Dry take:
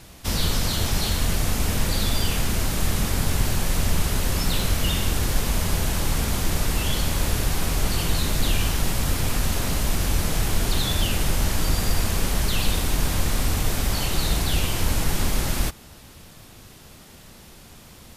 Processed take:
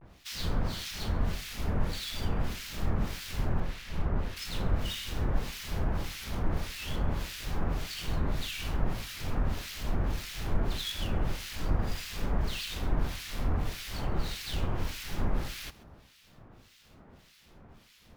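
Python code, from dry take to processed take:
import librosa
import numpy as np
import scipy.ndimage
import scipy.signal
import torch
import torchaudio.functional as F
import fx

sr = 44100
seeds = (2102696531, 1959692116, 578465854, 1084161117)

y = scipy.ndimage.median_filter(x, 5, mode='constant')
y = fx.high_shelf(y, sr, hz=4200.0, db=-12.0, at=(3.61, 4.36))
y = fx.vibrato(y, sr, rate_hz=0.43, depth_cents=56.0)
y = fx.harmonic_tremolo(y, sr, hz=1.7, depth_pct=100, crossover_hz=1700.0)
y = fx.echo_feedback(y, sr, ms=135, feedback_pct=17, wet_db=-20)
y = y * 10.0 ** (-4.5 / 20.0)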